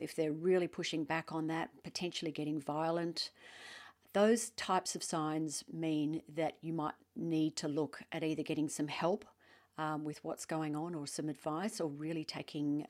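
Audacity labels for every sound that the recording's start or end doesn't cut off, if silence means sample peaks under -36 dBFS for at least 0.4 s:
4.150000	9.220000	sound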